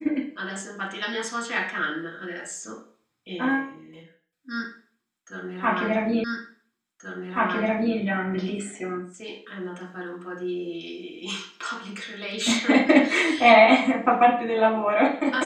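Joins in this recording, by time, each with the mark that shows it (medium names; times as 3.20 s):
6.24 s: repeat of the last 1.73 s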